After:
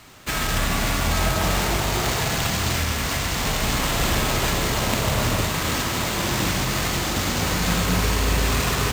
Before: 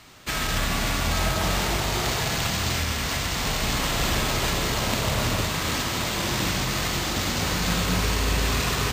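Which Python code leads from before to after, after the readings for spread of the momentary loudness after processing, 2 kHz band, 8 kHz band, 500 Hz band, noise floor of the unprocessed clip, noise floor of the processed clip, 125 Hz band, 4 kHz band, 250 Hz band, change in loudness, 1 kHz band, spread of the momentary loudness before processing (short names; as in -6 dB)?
2 LU, +2.0 dB, +2.5 dB, +3.0 dB, -28 dBFS, -25 dBFS, +3.0 dB, +1.0 dB, +3.0 dB, +2.0 dB, +2.5 dB, 2 LU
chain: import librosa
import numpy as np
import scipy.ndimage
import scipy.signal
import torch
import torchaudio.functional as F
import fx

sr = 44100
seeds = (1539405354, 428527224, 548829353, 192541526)

p1 = fx.sample_hold(x, sr, seeds[0], rate_hz=6500.0, jitter_pct=0)
p2 = x + F.gain(torch.from_numpy(p1), -8.0).numpy()
y = fx.high_shelf(p2, sr, hz=6400.0, db=4.0)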